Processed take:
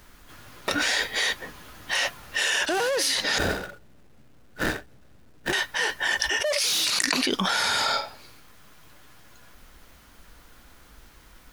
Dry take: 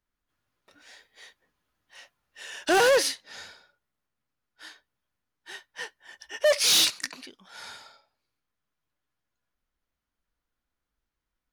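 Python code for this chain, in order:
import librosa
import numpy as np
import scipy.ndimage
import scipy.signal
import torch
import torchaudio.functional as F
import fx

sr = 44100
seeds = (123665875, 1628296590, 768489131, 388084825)

y = fx.median_filter(x, sr, points=41, at=(3.38, 5.53))
y = fx.env_flatten(y, sr, amount_pct=100)
y = y * 10.0 ** (-6.5 / 20.0)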